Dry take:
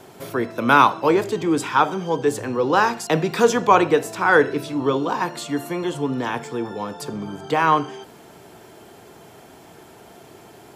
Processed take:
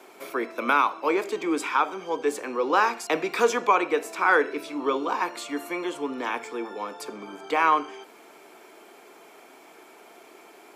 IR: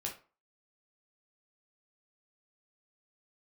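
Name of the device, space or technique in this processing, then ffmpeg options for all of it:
laptop speaker: -af "highpass=frequency=270:width=0.5412,highpass=frequency=270:width=1.3066,equalizer=frequency=1200:width_type=o:width=0.47:gain=5,equalizer=frequency=2300:width_type=o:width=0.22:gain=11,alimiter=limit=-4dB:level=0:latency=1:release=482,volume=-5dB"

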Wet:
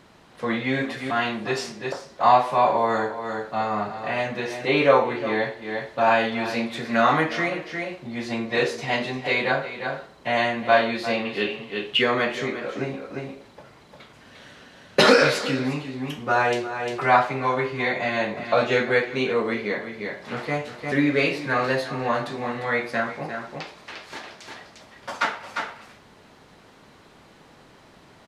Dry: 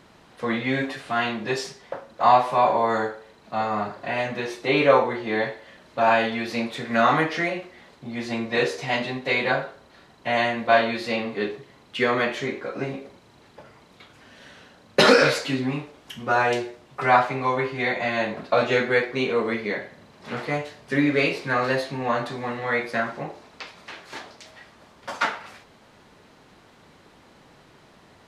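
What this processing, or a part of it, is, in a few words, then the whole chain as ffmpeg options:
ducked delay: -filter_complex "[0:a]asplit=3[link_01][link_02][link_03];[link_02]adelay=351,volume=-3.5dB[link_04];[link_03]apad=whole_len=1262306[link_05];[link_04][link_05]sidechaincompress=threshold=-34dB:ratio=8:attack=16:release=328[link_06];[link_01][link_06]amix=inputs=2:normalize=0,asettb=1/sr,asplit=3[link_07][link_08][link_09];[link_07]atrim=end=11.254[link_10];[link_08]atrim=start=11.25:end=12.02,asetpts=PTS-STARTPTS,afade=type=in:duration=0.004:curve=qsin,afade=type=out:start_time=0.766:duration=0.004:curve=qsin,equalizer=frequency=2900:width=3.1:gain=14[link_11];[link_09]atrim=start=12.016[link_12];[link_10][link_11]acrossfade=duration=0.004:curve1=hsin:curve2=qsin[link_13];[link_13][link_12]acrossfade=duration=0.004:curve1=qsin:curve2=hsin"

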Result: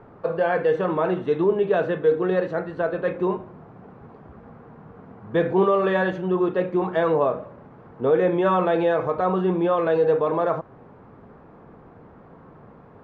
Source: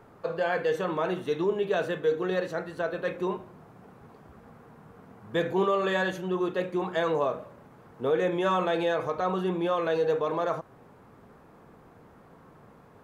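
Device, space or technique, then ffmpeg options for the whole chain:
phone in a pocket: -af "lowpass=3700,highshelf=frequency=2200:gain=-11,volume=7dB"

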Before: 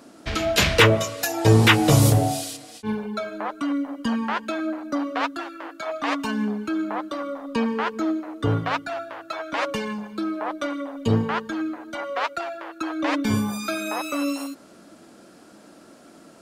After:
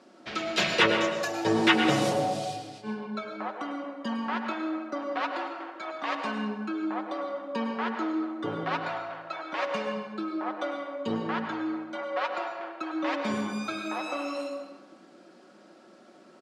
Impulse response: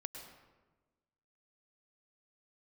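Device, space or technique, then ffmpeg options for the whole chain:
supermarket ceiling speaker: -filter_complex "[0:a]highpass=260,lowpass=5200,lowshelf=frequency=180:gain=3[link_01];[1:a]atrim=start_sample=2205[link_02];[link_01][link_02]afir=irnorm=-1:irlink=0,aecho=1:1:5.4:0.48,volume=-2.5dB"

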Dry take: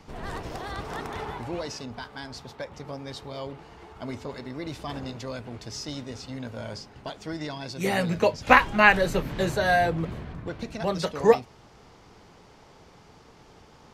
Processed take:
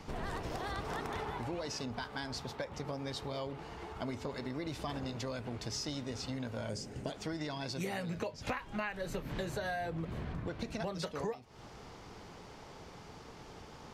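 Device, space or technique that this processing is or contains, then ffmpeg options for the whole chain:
serial compression, leveller first: -filter_complex "[0:a]asettb=1/sr,asplit=3[link_01][link_02][link_03];[link_01]atrim=end=6.694[link_04];[link_02]atrim=start=6.69:end=7.12,asetpts=PTS-STARTPTS,afade=type=in:duration=0.004:curve=qsin,afade=type=out:start_time=0.426:duration=0.004:curve=qsin,equalizer=frequency=125:width_type=o:width=1:gain=4,equalizer=frequency=250:width_type=o:width=1:gain=4,equalizer=frequency=500:width_type=o:width=1:gain=5,equalizer=frequency=1000:width_type=o:width=1:gain=-9,equalizer=frequency=4000:width_type=o:width=1:gain=-6,equalizer=frequency=8000:width_type=o:width=1:gain=10[link_05];[link_03]atrim=start=7.116[link_06];[link_04][link_05]acrossfade=duration=0.004:curve1=hsin:curve2=qsin[link_07];[link_07][link_06]acrossfade=duration=0.004:curve1=qsin:curve2=hsin,acompressor=threshold=-27dB:ratio=2,acompressor=threshold=-37dB:ratio=6,volume=1.5dB"

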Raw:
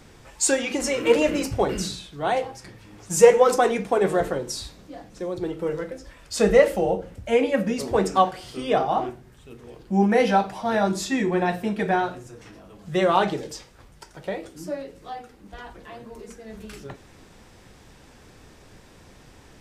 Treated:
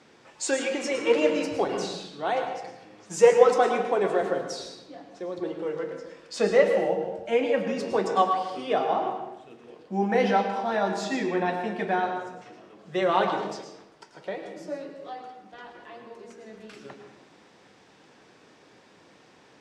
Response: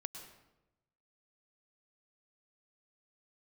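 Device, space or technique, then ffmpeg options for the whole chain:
supermarket ceiling speaker: -filter_complex "[0:a]highpass=240,lowpass=5600[link_01];[1:a]atrim=start_sample=2205[link_02];[link_01][link_02]afir=irnorm=-1:irlink=0"

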